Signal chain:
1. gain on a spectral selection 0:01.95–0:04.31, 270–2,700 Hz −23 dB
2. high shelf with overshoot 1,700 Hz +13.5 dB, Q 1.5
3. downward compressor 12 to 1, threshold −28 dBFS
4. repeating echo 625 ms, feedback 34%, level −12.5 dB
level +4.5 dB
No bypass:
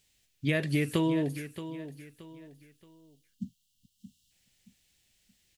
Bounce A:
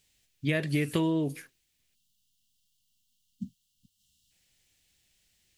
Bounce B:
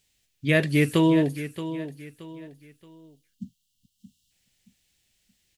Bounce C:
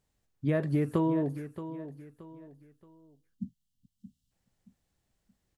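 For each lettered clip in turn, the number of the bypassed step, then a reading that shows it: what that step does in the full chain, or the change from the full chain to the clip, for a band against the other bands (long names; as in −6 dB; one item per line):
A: 4, change in momentary loudness spread −5 LU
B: 3, average gain reduction 5.0 dB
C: 2, 2 kHz band −10.0 dB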